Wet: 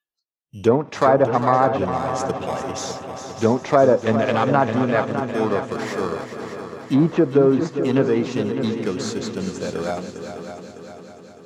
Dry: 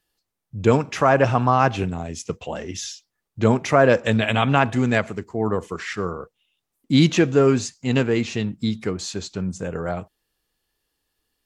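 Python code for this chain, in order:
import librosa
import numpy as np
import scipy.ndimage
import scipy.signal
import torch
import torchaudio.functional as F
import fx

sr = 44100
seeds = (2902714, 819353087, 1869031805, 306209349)

p1 = fx.sample_hold(x, sr, seeds[0], rate_hz=2900.0, jitter_pct=0)
p2 = x + (p1 * librosa.db_to_amplitude(-5.0))
p3 = fx.dynamic_eq(p2, sr, hz=2700.0, q=1.7, threshold_db=-39.0, ratio=4.0, max_db=-6)
p4 = fx.env_lowpass_down(p3, sr, base_hz=1000.0, full_db=-8.5)
p5 = fx.highpass(p4, sr, hz=320.0, slope=6)
p6 = p5 + fx.echo_heads(p5, sr, ms=202, heads='second and third', feedback_pct=57, wet_db=-10, dry=0)
y = fx.noise_reduce_blind(p6, sr, reduce_db=22)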